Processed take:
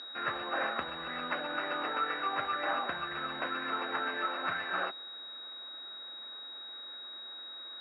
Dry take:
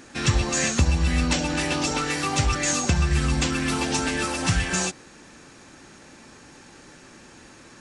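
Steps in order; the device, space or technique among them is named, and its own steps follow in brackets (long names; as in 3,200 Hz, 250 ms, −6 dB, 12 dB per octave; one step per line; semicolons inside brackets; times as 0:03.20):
toy sound module (linearly interpolated sample-rate reduction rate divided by 6×; switching amplifier with a slow clock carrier 3,800 Hz; loudspeaker in its box 690–4,900 Hz, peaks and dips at 870 Hz −6 dB, 1,400 Hz +6 dB, 3,800 Hz −10 dB)
level −2.5 dB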